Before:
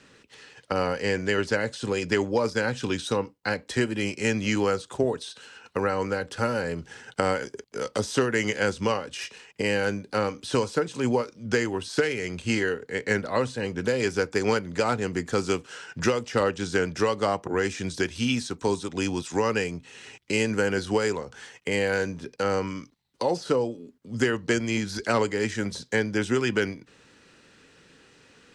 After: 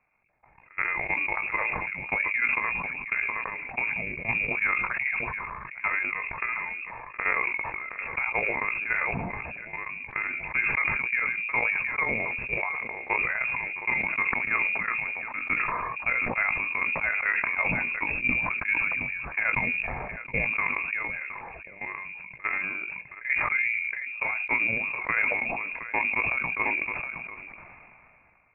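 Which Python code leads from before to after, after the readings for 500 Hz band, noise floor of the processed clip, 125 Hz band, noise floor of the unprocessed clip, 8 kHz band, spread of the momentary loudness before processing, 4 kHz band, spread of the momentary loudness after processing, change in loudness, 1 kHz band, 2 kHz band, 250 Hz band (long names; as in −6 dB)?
−15.0 dB, −52 dBFS, −10.5 dB, −59 dBFS, below −40 dB, 8 LU, below −20 dB, 10 LU, 0.0 dB, −1.0 dB, +6.0 dB, −14.0 dB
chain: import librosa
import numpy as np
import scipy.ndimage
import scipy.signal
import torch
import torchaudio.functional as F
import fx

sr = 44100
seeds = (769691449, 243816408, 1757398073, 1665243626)

y = fx.level_steps(x, sr, step_db=24)
y = fx.transient(y, sr, attack_db=-1, sustain_db=5)
y = fx.chopper(y, sr, hz=9.1, depth_pct=60, duty_pct=50)
y = fx.doubler(y, sr, ms=17.0, db=-11.5)
y = y + 10.0 ** (-20.5 / 20.0) * np.pad(y, (int(718 * sr / 1000.0), 0))[:len(y)]
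y = fx.freq_invert(y, sr, carrier_hz=2600)
y = fx.sustainer(y, sr, db_per_s=22.0)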